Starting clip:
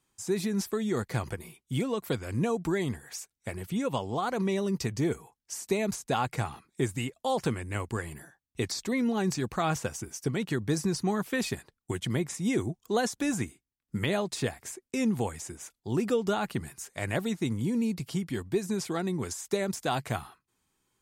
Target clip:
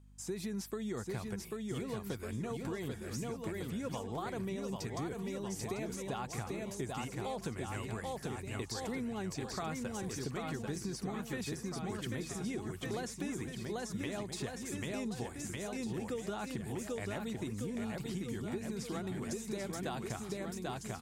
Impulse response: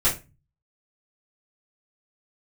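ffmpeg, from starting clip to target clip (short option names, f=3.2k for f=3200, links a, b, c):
-af "aecho=1:1:790|1501|2141|2717|3235:0.631|0.398|0.251|0.158|0.1,acompressor=threshold=-30dB:ratio=6,aeval=exprs='val(0)+0.00251*(sin(2*PI*50*n/s)+sin(2*PI*2*50*n/s)/2+sin(2*PI*3*50*n/s)/3+sin(2*PI*4*50*n/s)/4+sin(2*PI*5*50*n/s)/5)':c=same,volume=-5.5dB"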